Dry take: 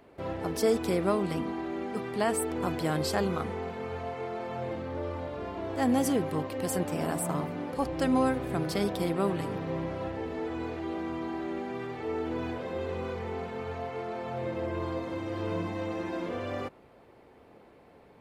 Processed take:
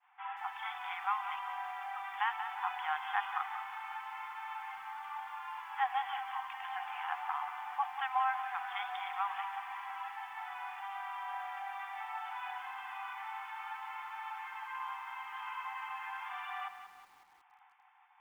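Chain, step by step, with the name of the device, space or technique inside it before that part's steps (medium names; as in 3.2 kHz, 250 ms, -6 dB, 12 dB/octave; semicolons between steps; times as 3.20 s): FFT band-pass 730–3600 Hz; hearing-loss simulation (low-pass 3 kHz 12 dB/octave; expander -60 dBFS); bit-crushed delay 183 ms, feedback 55%, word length 10-bit, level -10 dB; trim +1 dB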